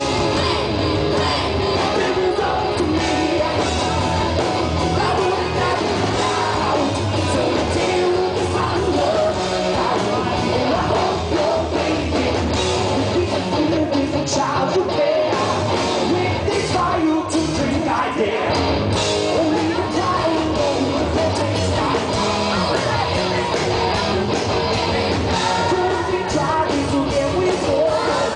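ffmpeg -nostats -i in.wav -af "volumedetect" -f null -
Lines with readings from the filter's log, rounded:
mean_volume: -18.6 dB
max_volume: -8.1 dB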